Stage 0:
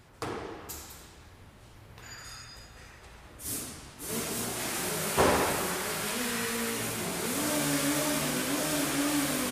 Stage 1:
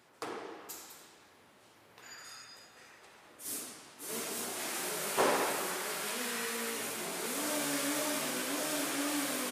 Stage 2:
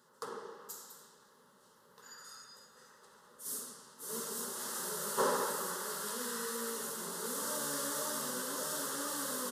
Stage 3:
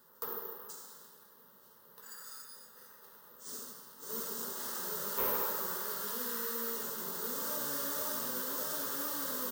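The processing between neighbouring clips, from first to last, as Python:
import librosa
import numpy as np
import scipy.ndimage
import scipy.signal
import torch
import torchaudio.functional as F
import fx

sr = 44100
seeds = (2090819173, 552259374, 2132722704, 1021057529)

y1 = scipy.signal.sosfilt(scipy.signal.butter(2, 280.0, 'highpass', fs=sr, output='sos'), x)
y1 = y1 * librosa.db_to_amplitude(-4.0)
y2 = fx.fixed_phaser(y1, sr, hz=470.0, stages=8)
y3 = (np.kron(scipy.signal.resample_poly(y2, 1, 3), np.eye(3)[0]) * 3)[:len(y2)]
y3 = 10.0 ** (-24.0 / 20.0) * np.tanh(y3 / 10.0 ** (-24.0 / 20.0))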